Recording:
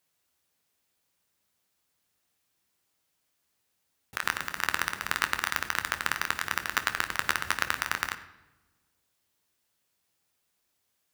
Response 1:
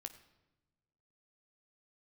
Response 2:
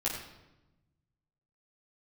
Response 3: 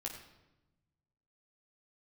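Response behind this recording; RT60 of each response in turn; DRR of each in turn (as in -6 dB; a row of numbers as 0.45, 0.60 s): 1; not exponential, 1.0 s, 1.0 s; 8.0, -6.5, -1.0 dB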